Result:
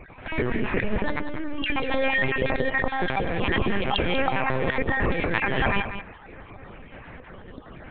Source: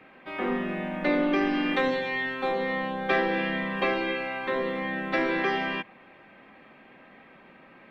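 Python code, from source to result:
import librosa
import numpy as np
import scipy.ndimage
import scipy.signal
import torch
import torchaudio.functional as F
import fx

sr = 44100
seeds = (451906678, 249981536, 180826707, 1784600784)

p1 = fx.spec_dropout(x, sr, seeds[0], share_pct=36)
p2 = fx.low_shelf(p1, sr, hz=270.0, db=7.0)
p3 = fx.lpc_vocoder(p2, sr, seeds[1], excitation='pitch_kept', order=8)
p4 = fx.over_compress(p3, sr, threshold_db=-30.0, ratio=-1.0)
p5 = p4 + fx.echo_single(p4, sr, ms=191, db=-10.0, dry=0)
y = F.gain(torch.from_numpy(p5), 4.5).numpy()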